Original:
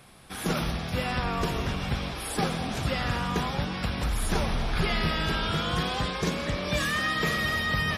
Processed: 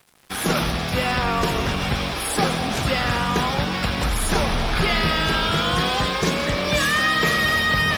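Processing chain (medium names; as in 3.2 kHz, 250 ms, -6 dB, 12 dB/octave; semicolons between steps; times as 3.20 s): bass shelf 230 Hz -5 dB; in parallel at -0.5 dB: peak limiter -27 dBFS, peak gain reduction 10.5 dB; on the sum: crossover distortion -44 dBFS; trim +6 dB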